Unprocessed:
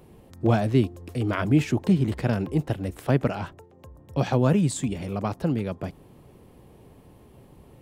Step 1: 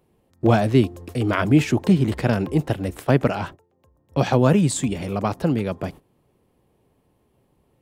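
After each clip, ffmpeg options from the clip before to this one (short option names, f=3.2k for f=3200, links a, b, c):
-af "agate=range=-17dB:threshold=-41dB:ratio=16:detection=peak,lowshelf=f=230:g=-4,volume=6dB"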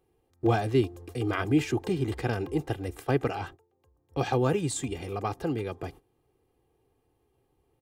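-af "aecho=1:1:2.5:0.65,volume=-8.5dB"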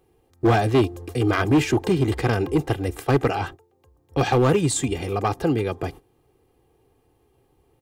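-af "volume=21dB,asoftclip=hard,volume=-21dB,volume=8.5dB"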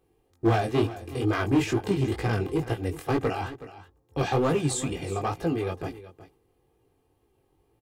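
-af "flanger=delay=17.5:depth=5.2:speed=2.2,aecho=1:1:371:0.168,volume=-2.5dB"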